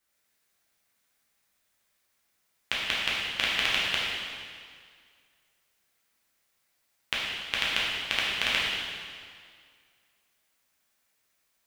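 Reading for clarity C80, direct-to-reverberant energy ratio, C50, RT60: 0.5 dB, -7.0 dB, -1.5 dB, 2.0 s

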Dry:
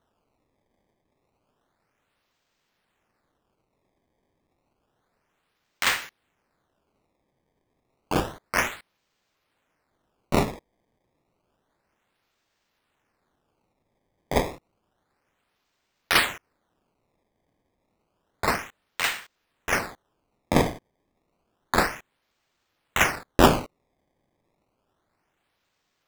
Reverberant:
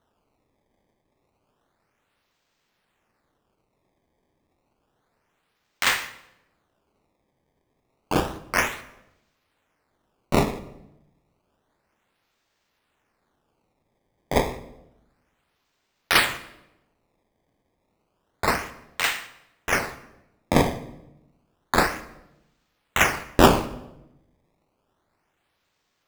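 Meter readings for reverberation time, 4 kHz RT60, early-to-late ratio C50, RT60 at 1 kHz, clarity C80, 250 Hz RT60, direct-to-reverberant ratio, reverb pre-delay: 0.90 s, 0.70 s, 14.5 dB, 0.80 s, 16.5 dB, 1.1 s, 11.5 dB, 15 ms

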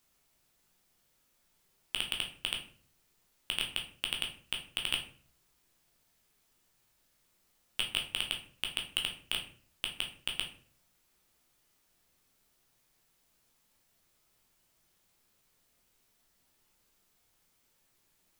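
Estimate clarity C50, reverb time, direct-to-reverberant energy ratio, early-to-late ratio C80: 9.0 dB, 0.45 s, 1.0 dB, 14.0 dB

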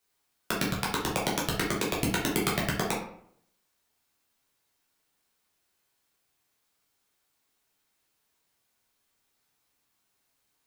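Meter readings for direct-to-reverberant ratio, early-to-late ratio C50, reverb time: -4.5 dB, 4.0 dB, 0.65 s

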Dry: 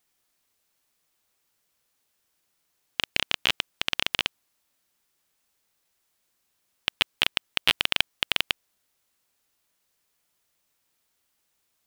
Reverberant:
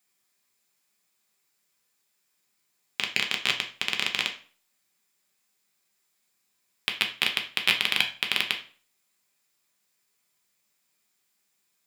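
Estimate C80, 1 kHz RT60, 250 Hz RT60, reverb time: 16.5 dB, 0.40 s, 0.45 s, 0.40 s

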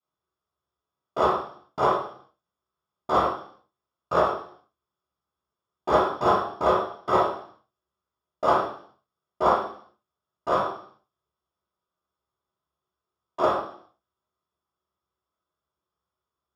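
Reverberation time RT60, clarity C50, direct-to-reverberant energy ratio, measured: 0.55 s, 3.5 dB, -17.0 dB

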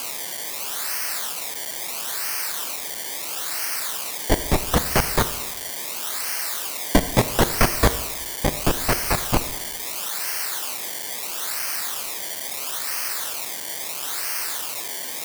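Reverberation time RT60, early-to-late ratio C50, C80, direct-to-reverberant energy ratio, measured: 1.2 s, 12.5 dB, 14.0 dB, 11.0 dB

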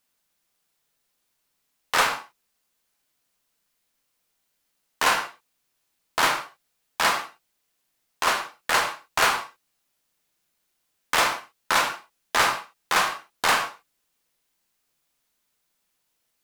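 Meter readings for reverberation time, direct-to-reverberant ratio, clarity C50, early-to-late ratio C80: not exponential, 5.0 dB, 8.5 dB, 11.5 dB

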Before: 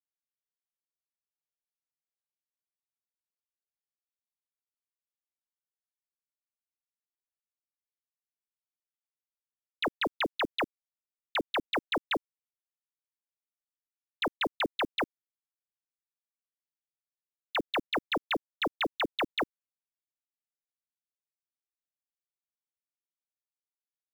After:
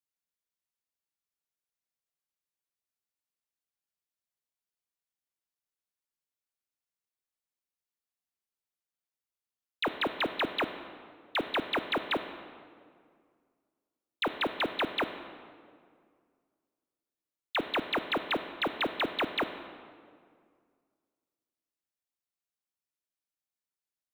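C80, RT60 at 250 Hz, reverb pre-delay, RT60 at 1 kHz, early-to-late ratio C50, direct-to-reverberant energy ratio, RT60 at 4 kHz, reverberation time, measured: 11.0 dB, 2.3 s, 15 ms, 2.0 s, 9.5 dB, 8.5 dB, 1.4 s, 2.1 s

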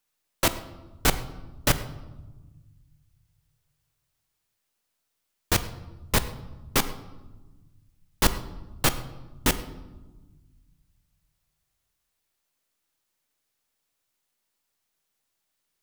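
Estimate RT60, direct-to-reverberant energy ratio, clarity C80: 1.2 s, 11.0 dB, 14.5 dB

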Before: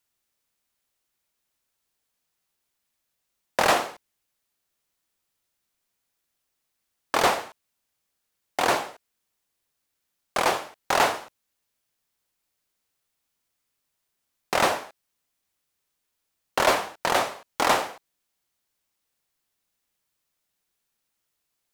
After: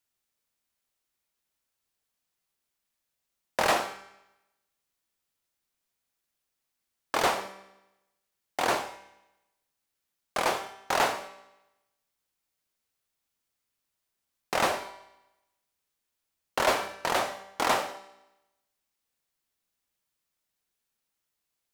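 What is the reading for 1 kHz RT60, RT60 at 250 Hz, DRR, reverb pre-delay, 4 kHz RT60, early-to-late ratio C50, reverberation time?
0.95 s, 0.95 s, 9.5 dB, 5 ms, 0.90 s, 13.0 dB, 0.95 s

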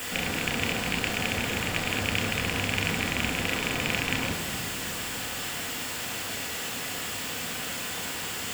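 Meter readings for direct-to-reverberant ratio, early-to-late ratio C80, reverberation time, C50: 2.0 dB, 8.0 dB, 2.6 s, 7.0 dB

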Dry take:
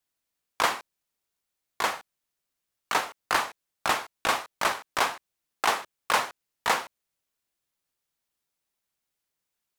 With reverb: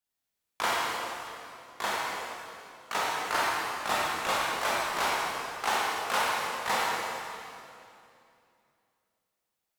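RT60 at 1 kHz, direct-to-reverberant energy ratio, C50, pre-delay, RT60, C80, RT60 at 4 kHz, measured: 2.6 s, -6.5 dB, -3.5 dB, 15 ms, 2.6 s, -2.0 dB, 2.4 s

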